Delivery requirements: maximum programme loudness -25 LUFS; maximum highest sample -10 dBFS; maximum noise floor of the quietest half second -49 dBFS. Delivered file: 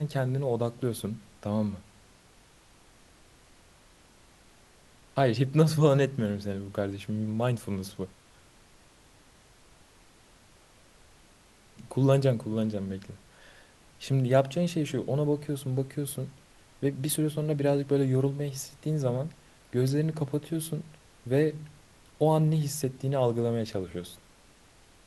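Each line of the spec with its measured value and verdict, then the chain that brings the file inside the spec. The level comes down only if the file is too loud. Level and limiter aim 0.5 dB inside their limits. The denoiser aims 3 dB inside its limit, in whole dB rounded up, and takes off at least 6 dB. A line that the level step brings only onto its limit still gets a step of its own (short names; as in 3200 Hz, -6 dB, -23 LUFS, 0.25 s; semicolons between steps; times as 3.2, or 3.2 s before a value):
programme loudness -29.0 LUFS: OK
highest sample -8.5 dBFS: fail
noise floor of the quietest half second -58 dBFS: OK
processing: limiter -10.5 dBFS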